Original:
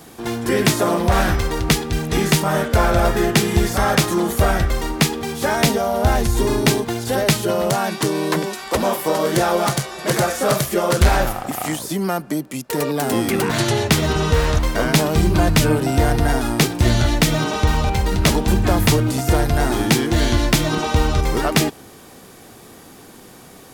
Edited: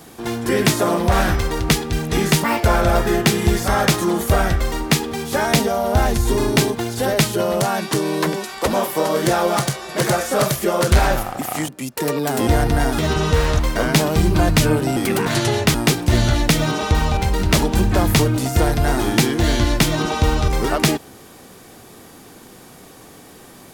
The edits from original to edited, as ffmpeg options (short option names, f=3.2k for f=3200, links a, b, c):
-filter_complex "[0:a]asplit=8[a][b][c][d][e][f][g][h];[a]atrim=end=2.444[i];[b]atrim=start=2.44:end=2.73,asetpts=PTS-STARTPTS,asetrate=65709,aresample=44100,atrim=end_sample=8583,asetpts=PTS-STARTPTS[j];[c]atrim=start=2.726:end=11.782[k];[d]atrim=start=12.408:end=13.202[l];[e]atrim=start=15.958:end=16.472[m];[f]atrim=start=13.978:end=15.962[n];[g]atrim=start=13.198:end=13.982[o];[h]atrim=start=16.468[p];[i][j]acrossfade=d=0.004:c1=hsin:c2=hsin[q];[q][k]acrossfade=d=0.004:c1=hsin:c2=hsin[r];[r][l]acrossfade=d=0.004:c1=hsin:c2=hsin[s];[s][m]acrossfade=d=0.004:c1=hsin:c2=hsin[t];[t][n]acrossfade=d=0.004:c1=hsin:c2=hsin[u];[u][o]acrossfade=d=0.004:c1=hsin:c2=hsin[v];[v][p]acrossfade=d=0.004:c1=hsin:c2=hsin"